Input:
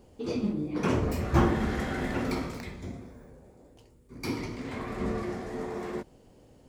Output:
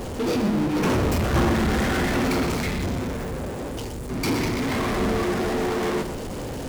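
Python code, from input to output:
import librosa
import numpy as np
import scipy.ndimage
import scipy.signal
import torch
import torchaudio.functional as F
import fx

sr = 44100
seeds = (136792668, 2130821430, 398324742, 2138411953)

y = fx.power_curve(x, sr, exponent=0.35)
y = y + 10.0 ** (-11.0 / 20.0) * np.pad(y, (int(119 * sr / 1000.0), 0))[:len(y)]
y = y * librosa.db_to_amplitude(-5.0)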